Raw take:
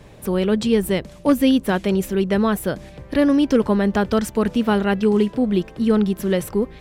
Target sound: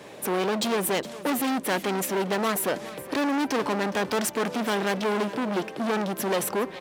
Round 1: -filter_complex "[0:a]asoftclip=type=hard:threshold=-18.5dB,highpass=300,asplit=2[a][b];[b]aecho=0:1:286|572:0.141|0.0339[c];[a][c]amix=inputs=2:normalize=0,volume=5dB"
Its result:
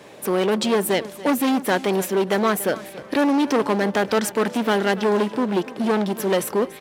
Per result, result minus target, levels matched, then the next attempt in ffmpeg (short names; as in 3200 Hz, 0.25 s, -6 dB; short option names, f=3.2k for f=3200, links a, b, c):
echo 0.129 s early; hard clip: distortion -4 dB
-filter_complex "[0:a]asoftclip=type=hard:threshold=-18.5dB,highpass=300,asplit=2[a][b];[b]aecho=0:1:415|830:0.141|0.0339[c];[a][c]amix=inputs=2:normalize=0,volume=5dB"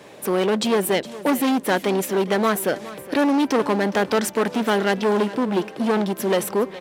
hard clip: distortion -4 dB
-filter_complex "[0:a]asoftclip=type=hard:threshold=-26dB,highpass=300,asplit=2[a][b];[b]aecho=0:1:415|830:0.141|0.0339[c];[a][c]amix=inputs=2:normalize=0,volume=5dB"